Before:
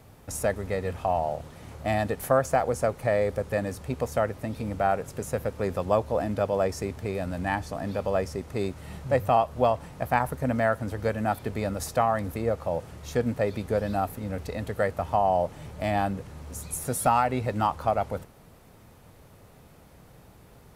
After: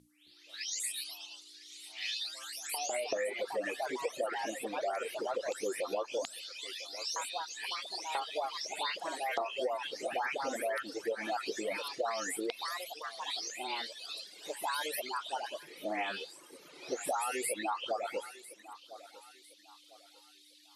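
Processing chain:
every frequency bin delayed by itself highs late, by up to 496 ms
auto-filter high-pass square 0.16 Hz 350–3,900 Hz
mains hum 60 Hz, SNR 18 dB
meter weighting curve D
background noise violet −65 dBFS
low-shelf EQ 96 Hz −9.5 dB
mains-hum notches 60/120/180/240 Hz
on a send: feedback echo with a high-pass in the loop 1,000 ms, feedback 35%, high-pass 340 Hz, level −19 dB
on the sum: delay with pitch and tempo change per echo 266 ms, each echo +3 semitones, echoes 2, each echo −6 dB
Chebyshev low-pass filter 12,000 Hz, order 6
downward compressor 6 to 1, threshold −26 dBFS, peak gain reduction 9 dB
reverb reduction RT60 1.1 s
level −4 dB

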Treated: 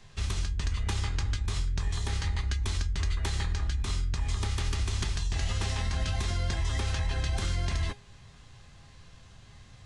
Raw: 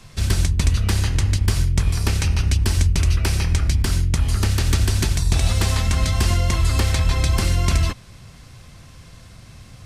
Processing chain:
brickwall limiter −11.5 dBFS, peak gain reduction 5.5 dB
formants moved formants −5 semitones
tuned comb filter 410 Hz, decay 0.22 s, harmonics all, mix 70%

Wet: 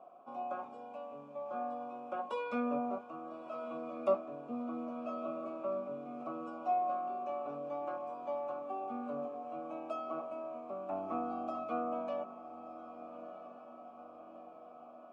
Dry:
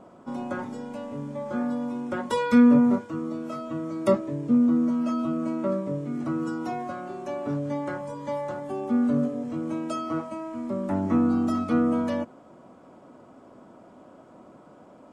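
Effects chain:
formant filter a
feedback delay with all-pass diffusion 1,309 ms, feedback 58%, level −12 dB
level +2.5 dB

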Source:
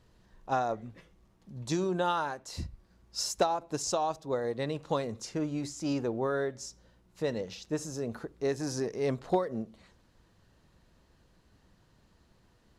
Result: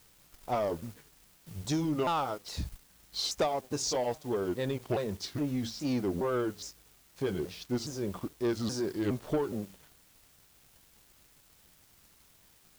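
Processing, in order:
pitch shifter swept by a sawtooth −5.5 semitones, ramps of 414 ms
background noise white −59 dBFS
leveller curve on the samples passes 2
level −5 dB

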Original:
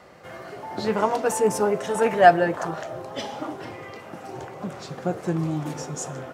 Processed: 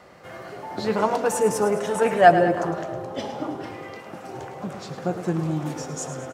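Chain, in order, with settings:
0:02.28–0:03.64: tilt shelving filter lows +4 dB, about 780 Hz
on a send: repeating echo 107 ms, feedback 57%, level −11 dB

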